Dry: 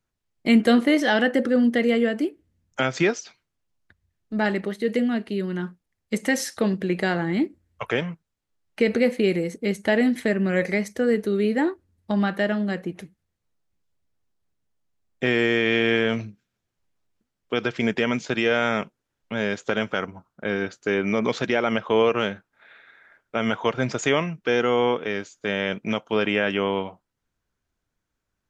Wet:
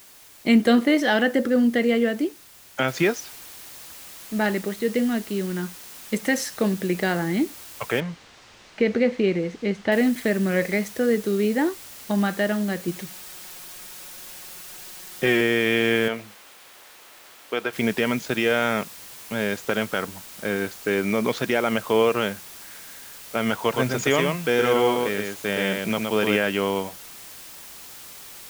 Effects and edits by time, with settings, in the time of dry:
2.88 noise floor step -49 dB -42 dB
8–9.92 air absorption 140 m
12.87–15.41 comb 5.5 ms
16.08–17.73 tone controls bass -14 dB, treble -9 dB
23.61–26.37 echo 0.118 s -3.5 dB

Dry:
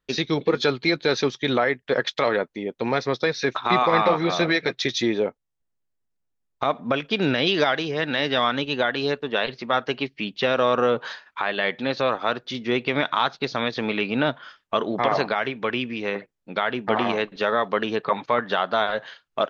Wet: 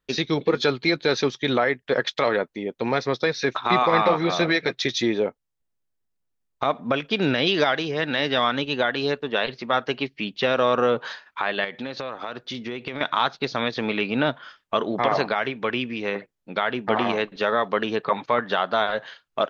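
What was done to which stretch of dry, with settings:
11.64–13.01 compressor, threshold -27 dBFS

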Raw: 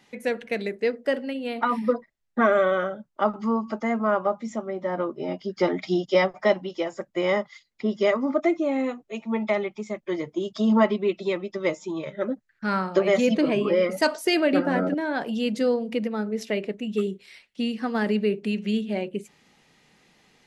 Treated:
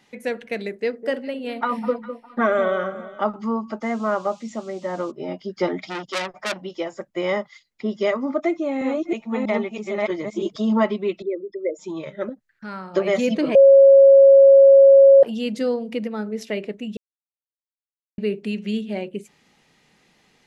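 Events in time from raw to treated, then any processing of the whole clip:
0.77–3.22 echo with dull and thin repeats by turns 0.203 s, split 1100 Hz, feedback 50%, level -10.5 dB
3.81–5.1 band noise 2500–7300 Hz -55 dBFS
5.87–6.64 core saturation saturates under 4000 Hz
8.49–10.56 reverse delay 0.322 s, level 0 dB
11.22–11.79 formant sharpening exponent 3
12.29–12.94 compressor 1.5:1, threshold -43 dBFS
13.55–15.23 bleep 548 Hz -6.5 dBFS
16.97–18.18 mute

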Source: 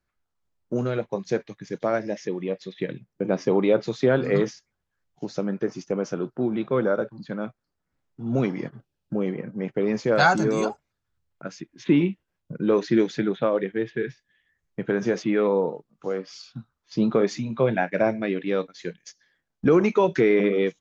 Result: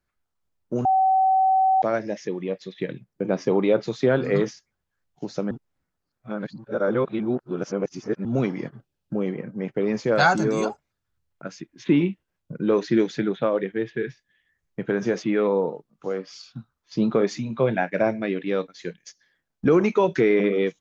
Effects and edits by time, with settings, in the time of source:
0.85–1.82 bleep 762 Hz -15.5 dBFS
5.51–8.25 reverse

